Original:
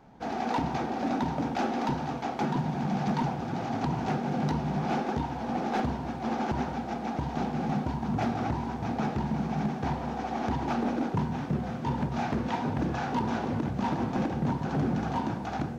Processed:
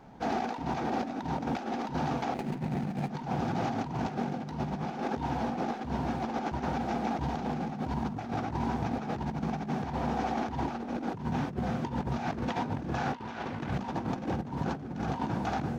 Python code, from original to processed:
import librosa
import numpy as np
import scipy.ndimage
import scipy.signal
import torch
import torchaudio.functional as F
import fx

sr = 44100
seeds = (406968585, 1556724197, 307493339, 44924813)

y = fx.median_filter(x, sr, points=41, at=(2.34, 3.1))
y = fx.peak_eq(y, sr, hz=2200.0, db=9.5, octaves=2.7, at=(13.13, 13.78))
y = fx.over_compress(y, sr, threshold_db=-32.0, ratio=-0.5)